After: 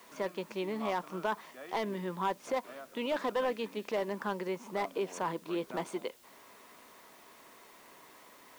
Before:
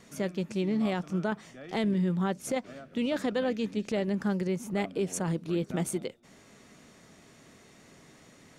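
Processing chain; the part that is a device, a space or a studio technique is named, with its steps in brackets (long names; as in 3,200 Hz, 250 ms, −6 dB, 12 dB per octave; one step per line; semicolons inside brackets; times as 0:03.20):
drive-through speaker (band-pass filter 400–4,000 Hz; parametric band 1,000 Hz +12 dB 0.32 octaves; hard clipping −24.5 dBFS, distortion −15 dB; white noise bed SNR 25 dB)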